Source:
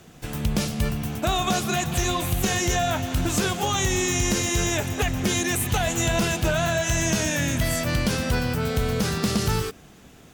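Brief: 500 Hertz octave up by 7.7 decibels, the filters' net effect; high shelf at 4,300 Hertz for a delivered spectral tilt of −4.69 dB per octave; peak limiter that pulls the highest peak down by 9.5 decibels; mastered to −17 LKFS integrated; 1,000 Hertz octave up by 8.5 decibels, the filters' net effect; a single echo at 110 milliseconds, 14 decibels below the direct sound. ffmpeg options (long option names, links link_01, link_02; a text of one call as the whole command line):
ffmpeg -i in.wav -af "equalizer=frequency=500:width_type=o:gain=7.5,equalizer=frequency=1000:width_type=o:gain=9,highshelf=frequency=4300:gain=-4,alimiter=limit=-15.5dB:level=0:latency=1,aecho=1:1:110:0.2,volume=7dB" out.wav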